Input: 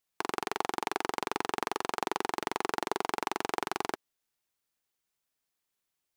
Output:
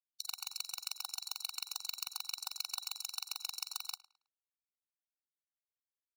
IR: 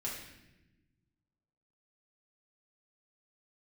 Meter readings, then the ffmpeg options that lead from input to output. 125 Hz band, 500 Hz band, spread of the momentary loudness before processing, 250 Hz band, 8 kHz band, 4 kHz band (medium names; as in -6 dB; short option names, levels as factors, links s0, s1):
under -40 dB, under -40 dB, 2 LU, under -40 dB, +2.5 dB, +2.0 dB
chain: -filter_complex "[0:a]afftfilt=real='re*(1-between(b*sr/4096,170,3800))':imag='im*(1-between(b*sr/4096,170,3800))':win_size=4096:overlap=0.75,agate=range=0.002:threshold=0.00282:ratio=16:detection=peak,equalizer=f=250:w=0.82:g=10,bandreject=f=60:t=h:w=6,bandreject=f=120:t=h:w=6,bandreject=f=180:t=h:w=6,bandreject=f=240:t=h:w=6,bandreject=f=300:t=h:w=6,bandreject=f=360:t=h:w=6,aeval=exprs='(tanh(17.8*val(0)+0.7)-tanh(0.7))/17.8':c=same,alimiter=level_in=1.41:limit=0.0631:level=0:latency=1:release=83,volume=0.708,tremolo=f=52:d=0.974,aeval=exprs='0.0447*sin(PI/2*5.62*val(0)/0.0447)':c=same,afreqshift=150,lowshelf=f=450:g=10.5,asplit=2[s0][s1];[s1]adelay=107,lowpass=f=4300:p=1,volume=0.119,asplit=2[s2][s3];[s3]adelay=107,lowpass=f=4300:p=1,volume=0.31,asplit=2[s4][s5];[s5]adelay=107,lowpass=f=4300:p=1,volume=0.31[s6];[s0][s2][s4][s6]amix=inputs=4:normalize=0,afftfilt=real='re*eq(mod(floor(b*sr/1024/740),2),1)':imag='im*eq(mod(floor(b*sr/1024/740),2),1)':win_size=1024:overlap=0.75,volume=2.11"